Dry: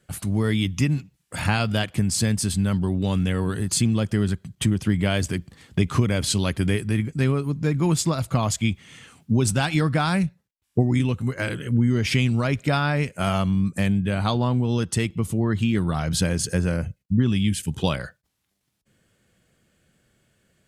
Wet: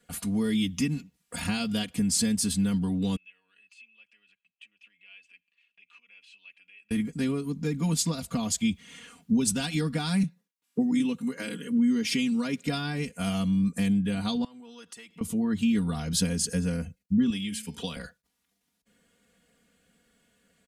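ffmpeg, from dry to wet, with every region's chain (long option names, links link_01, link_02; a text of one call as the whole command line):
ffmpeg -i in.wav -filter_complex "[0:a]asettb=1/sr,asplit=3[link_01][link_02][link_03];[link_01]atrim=end=3.164[link_04];[link_02]atrim=start=3.16:end=6.91,asetpts=PTS-STARTPTS,afade=type=in:duration=0.004:curve=qsin,afade=type=out:start_time=3.746:duration=0.004:curve=qsin,acompressor=threshold=-26dB:ratio=4:attack=3.2:release=140:knee=1:detection=peak,bandpass=frequency=2600:width_type=q:width=19[link_05];[link_03]atrim=start=6.906[link_06];[link_04][link_05]acrossfade=duration=0.004:curve1=hsin:curve2=qsin[link_07];[link_07][link_06]acrossfade=duration=0.004:curve1=qsin:curve2=hsin,asettb=1/sr,asplit=3[link_08][link_09][link_10];[link_08]atrim=end=10.234[link_11];[link_09]atrim=start=10.23:end=12.64,asetpts=PTS-STARTPTS,afade=type=in:duration=0.004:curve=qsin,afade=type=out:start_time=2.406:duration=0.004:curve=qsin,highpass=frequency=150:width=0.5412,highpass=frequency=150:width=1.3066,bandreject=frequency=690:width=12[link_12];[link_10]atrim=start=12.636[link_13];[link_11][link_12]acrossfade=duration=0.004:curve1=hsin:curve2=qsin[link_14];[link_14][link_13]acrossfade=duration=0.004:curve1=qsin:curve2=hsin,asettb=1/sr,asplit=3[link_15][link_16][link_17];[link_15]atrim=end=14.444[link_18];[link_16]atrim=start=14.44:end=15.21,asetpts=PTS-STARTPTS,afade=type=in:duration=0.004:curve=qsin,afade=type=out:start_time=0.766:duration=0.004:curve=qsin,highpass=frequency=1000:poles=1,acompressor=threshold=-40dB:ratio=10:attack=3.2:release=140:knee=1:detection=peak[link_19];[link_17]atrim=start=15.206[link_20];[link_18][link_19]acrossfade=duration=0.004:curve1=hsin:curve2=qsin[link_21];[link_21][link_20]acrossfade=duration=0.004:curve1=qsin:curve2=hsin,asettb=1/sr,asplit=3[link_22][link_23][link_24];[link_22]atrim=end=17.304[link_25];[link_23]atrim=start=17.3:end=17.96,asetpts=PTS-STARTPTS,afade=type=in:duration=0.004:curve=qsin,afade=type=out:start_time=0.656:duration=0.004:curve=qsin,bandreject=frequency=217.8:width_type=h:width=4,bandreject=frequency=435.6:width_type=h:width=4,bandreject=frequency=653.4:width_type=h:width=4,bandreject=frequency=871.2:width_type=h:width=4,bandreject=frequency=1089:width_type=h:width=4,bandreject=frequency=1306.8:width_type=h:width=4,bandreject=frequency=1524.6:width_type=h:width=4,bandreject=frequency=1742.4:width_type=h:width=4,bandreject=frequency=1960.2:width_type=h:width=4,bandreject=frequency=2178:width_type=h:width=4,bandreject=frequency=2395.8:width_type=h:width=4,bandreject=frequency=2613.6:width_type=h:width=4,bandreject=frequency=2831.4:width_type=h:width=4,bandreject=frequency=3049.2:width_type=h:width=4,bandreject=frequency=3267:width_type=h:width=4,bandreject=frequency=3484.8:width_type=h:width=4,bandreject=frequency=3702.6:width_type=h:width=4,bandreject=frequency=3920.4:width_type=h:width=4,bandreject=frequency=4138.2:width_type=h:width=4,bandreject=frequency=4356:width_type=h:width=4,bandreject=frequency=4573.8:width_type=h:width=4,bandreject=frequency=4791.6:width_type=h:width=4,bandreject=frequency=5009.4:width_type=h:width=4,bandreject=frequency=5227.2:width_type=h:width=4,bandreject=frequency=5445:width_type=h:width=4,bandreject=frequency=5662.8:width_type=h:width=4,bandreject=frequency=5880.6:width_type=h:width=4,acrossover=split=140|370|2400[link_26][link_27][link_28][link_29];[link_26]acompressor=threshold=-41dB:ratio=3[link_30];[link_27]acompressor=threshold=-37dB:ratio=3[link_31];[link_28]acompressor=threshold=-33dB:ratio=3[link_32];[link_29]acompressor=threshold=-35dB:ratio=3[link_33];[link_30][link_31][link_32][link_33]amix=inputs=4:normalize=0[link_34];[link_24]atrim=start=17.956[link_35];[link_25][link_34]acrossfade=duration=0.004:curve1=hsin:curve2=qsin[link_36];[link_36][link_35]acrossfade=duration=0.004:curve1=qsin:curve2=hsin,lowshelf=frequency=99:gain=-8,aecho=1:1:4.2:0.93,acrossover=split=350|3000[link_37][link_38][link_39];[link_38]acompressor=threshold=-43dB:ratio=2[link_40];[link_37][link_40][link_39]amix=inputs=3:normalize=0,volume=-3.5dB" out.wav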